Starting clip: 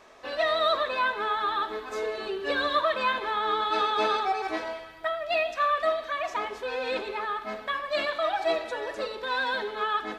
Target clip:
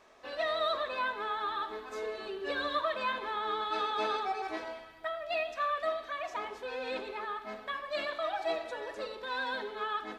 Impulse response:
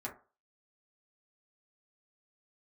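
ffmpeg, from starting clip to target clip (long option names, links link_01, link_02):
-filter_complex "[0:a]asplit=2[link_01][link_02];[1:a]atrim=start_sample=2205,lowpass=1000,adelay=85[link_03];[link_02][link_03]afir=irnorm=-1:irlink=0,volume=-11dB[link_04];[link_01][link_04]amix=inputs=2:normalize=0,volume=-7dB"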